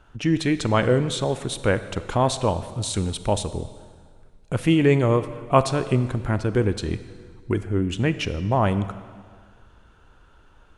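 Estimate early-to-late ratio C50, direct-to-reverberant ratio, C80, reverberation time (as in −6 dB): 13.0 dB, 12.0 dB, 14.0 dB, 1.8 s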